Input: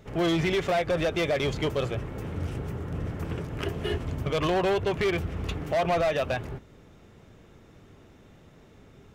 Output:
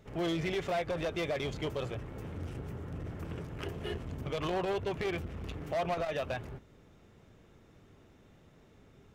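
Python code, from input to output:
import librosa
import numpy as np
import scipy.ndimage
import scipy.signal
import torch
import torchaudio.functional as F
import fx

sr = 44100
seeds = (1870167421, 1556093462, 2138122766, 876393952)

y = fx.transformer_sat(x, sr, knee_hz=170.0)
y = y * 10.0 ** (-6.5 / 20.0)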